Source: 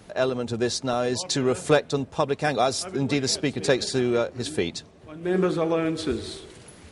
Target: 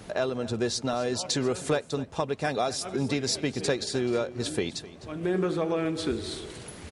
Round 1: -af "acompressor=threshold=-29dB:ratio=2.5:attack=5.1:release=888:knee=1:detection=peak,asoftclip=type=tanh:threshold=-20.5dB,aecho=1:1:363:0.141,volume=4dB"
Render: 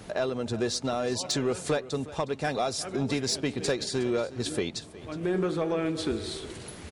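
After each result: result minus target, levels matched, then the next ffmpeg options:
soft clipping: distortion +17 dB; echo 107 ms late
-af "acompressor=threshold=-29dB:ratio=2.5:attack=5.1:release=888:knee=1:detection=peak,asoftclip=type=tanh:threshold=-11dB,aecho=1:1:363:0.141,volume=4dB"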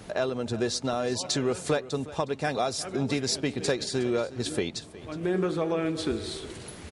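echo 107 ms late
-af "acompressor=threshold=-29dB:ratio=2.5:attack=5.1:release=888:knee=1:detection=peak,asoftclip=type=tanh:threshold=-11dB,aecho=1:1:256:0.141,volume=4dB"

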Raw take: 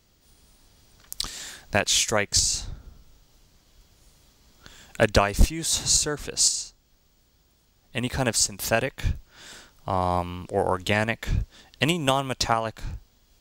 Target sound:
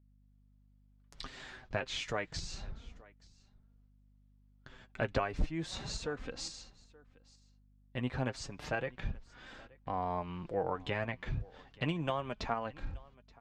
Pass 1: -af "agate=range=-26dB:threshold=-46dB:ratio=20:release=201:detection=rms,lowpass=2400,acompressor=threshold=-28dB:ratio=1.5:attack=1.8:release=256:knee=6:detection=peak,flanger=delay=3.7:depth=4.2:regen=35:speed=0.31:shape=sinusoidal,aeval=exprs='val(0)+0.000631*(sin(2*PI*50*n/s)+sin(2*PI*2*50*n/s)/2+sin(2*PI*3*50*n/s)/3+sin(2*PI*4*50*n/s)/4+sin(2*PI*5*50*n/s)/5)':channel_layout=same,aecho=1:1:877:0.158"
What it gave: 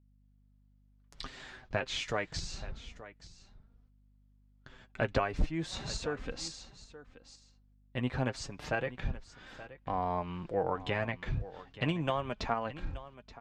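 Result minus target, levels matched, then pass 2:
echo-to-direct +7.5 dB; downward compressor: peak gain reduction −2.5 dB
-af "agate=range=-26dB:threshold=-46dB:ratio=20:release=201:detection=rms,lowpass=2400,acompressor=threshold=-35.5dB:ratio=1.5:attack=1.8:release=256:knee=6:detection=peak,flanger=delay=3.7:depth=4.2:regen=35:speed=0.31:shape=sinusoidal,aeval=exprs='val(0)+0.000631*(sin(2*PI*50*n/s)+sin(2*PI*2*50*n/s)/2+sin(2*PI*3*50*n/s)/3+sin(2*PI*4*50*n/s)/4+sin(2*PI*5*50*n/s)/5)':channel_layout=same,aecho=1:1:877:0.0668"

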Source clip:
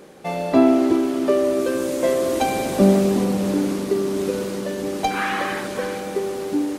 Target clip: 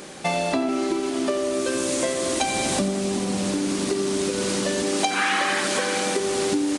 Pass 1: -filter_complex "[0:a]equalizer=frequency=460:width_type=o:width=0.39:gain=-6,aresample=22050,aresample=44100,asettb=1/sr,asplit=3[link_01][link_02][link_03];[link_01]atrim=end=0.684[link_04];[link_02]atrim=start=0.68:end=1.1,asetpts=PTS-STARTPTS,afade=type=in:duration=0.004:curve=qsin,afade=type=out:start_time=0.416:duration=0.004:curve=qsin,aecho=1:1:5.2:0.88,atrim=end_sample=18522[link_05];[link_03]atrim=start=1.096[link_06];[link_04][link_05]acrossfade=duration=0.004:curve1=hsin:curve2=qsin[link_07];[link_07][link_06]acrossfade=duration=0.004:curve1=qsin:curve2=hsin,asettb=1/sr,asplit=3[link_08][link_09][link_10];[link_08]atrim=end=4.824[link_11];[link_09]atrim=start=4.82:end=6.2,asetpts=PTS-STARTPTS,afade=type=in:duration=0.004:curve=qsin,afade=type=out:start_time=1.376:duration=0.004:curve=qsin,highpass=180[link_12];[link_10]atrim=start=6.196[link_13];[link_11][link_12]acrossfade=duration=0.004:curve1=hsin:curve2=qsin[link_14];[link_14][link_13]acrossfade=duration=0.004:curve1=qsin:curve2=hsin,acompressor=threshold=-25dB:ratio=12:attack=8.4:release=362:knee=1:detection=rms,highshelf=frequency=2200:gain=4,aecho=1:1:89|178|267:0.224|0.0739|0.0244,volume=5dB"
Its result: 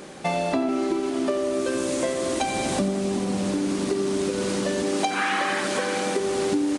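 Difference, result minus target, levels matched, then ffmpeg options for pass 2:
4,000 Hz band −3.5 dB
-filter_complex "[0:a]equalizer=frequency=460:width_type=o:width=0.39:gain=-6,aresample=22050,aresample=44100,asettb=1/sr,asplit=3[link_01][link_02][link_03];[link_01]atrim=end=0.684[link_04];[link_02]atrim=start=0.68:end=1.1,asetpts=PTS-STARTPTS,afade=type=in:duration=0.004:curve=qsin,afade=type=out:start_time=0.416:duration=0.004:curve=qsin,aecho=1:1:5.2:0.88,atrim=end_sample=18522[link_05];[link_03]atrim=start=1.096[link_06];[link_04][link_05]acrossfade=duration=0.004:curve1=hsin:curve2=qsin[link_07];[link_07][link_06]acrossfade=duration=0.004:curve1=qsin:curve2=hsin,asettb=1/sr,asplit=3[link_08][link_09][link_10];[link_08]atrim=end=4.824[link_11];[link_09]atrim=start=4.82:end=6.2,asetpts=PTS-STARTPTS,afade=type=in:duration=0.004:curve=qsin,afade=type=out:start_time=1.376:duration=0.004:curve=qsin,highpass=180[link_12];[link_10]atrim=start=6.196[link_13];[link_11][link_12]acrossfade=duration=0.004:curve1=hsin:curve2=qsin[link_14];[link_14][link_13]acrossfade=duration=0.004:curve1=qsin:curve2=hsin,acompressor=threshold=-25dB:ratio=12:attack=8.4:release=362:knee=1:detection=rms,highshelf=frequency=2200:gain=10.5,aecho=1:1:89|178|267:0.224|0.0739|0.0244,volume=5dB"

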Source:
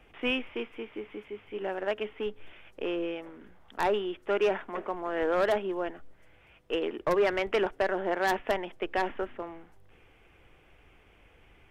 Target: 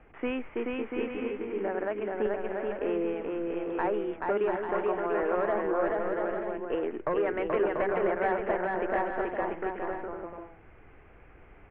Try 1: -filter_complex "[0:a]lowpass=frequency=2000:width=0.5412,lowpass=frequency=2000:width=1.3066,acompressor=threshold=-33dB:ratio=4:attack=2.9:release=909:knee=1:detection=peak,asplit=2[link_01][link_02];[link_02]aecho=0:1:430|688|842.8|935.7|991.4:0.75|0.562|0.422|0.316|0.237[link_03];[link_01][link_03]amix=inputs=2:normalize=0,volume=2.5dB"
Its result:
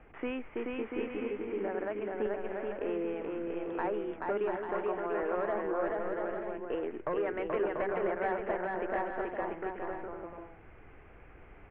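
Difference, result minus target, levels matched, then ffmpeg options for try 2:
downward compressor: peak gain reduction +4.5 dB
-filter_complex "[0:a]lowpass=frequency=2000:width=0.5412,lowpass=frequency=2000:width=1.3066,acompressor=threshold=-27dB:ratio=4:attack=2.9:release=909:knee=1:detection=peak,asplit=2[link_01][link_02];[link_02]aecho=0:1:430|688|842.8|935.7|991.4:0.75|0.562|0.422|0.316|0.237[link_03];[link_01][link_03]amix=inputs=2:normalize=0,volume=2.5dB"

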